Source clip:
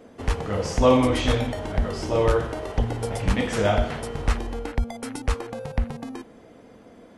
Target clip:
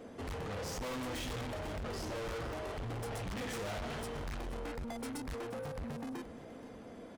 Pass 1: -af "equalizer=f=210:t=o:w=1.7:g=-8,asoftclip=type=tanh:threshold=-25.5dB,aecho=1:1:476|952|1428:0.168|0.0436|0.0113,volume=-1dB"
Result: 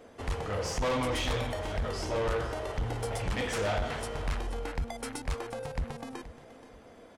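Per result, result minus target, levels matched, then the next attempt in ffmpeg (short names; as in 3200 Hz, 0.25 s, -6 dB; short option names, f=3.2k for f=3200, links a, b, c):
250 Hz band -4.5 dB; soft clip: distortion -6 dB
-af "asoftclip=type=tanh:threshold=-25.5dB,aecho=1:1:476|952|1428:0.168|0.0436|0.0113,volume=-1dB"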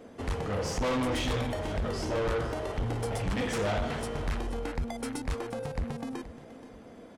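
soft clip: distortion -5 dB
-af "asoftclip=type=tanh:threshold=-37.5dB,aecho=1:1:476|952|1428:0.168|0.0436|0.0113,volume=-1dB"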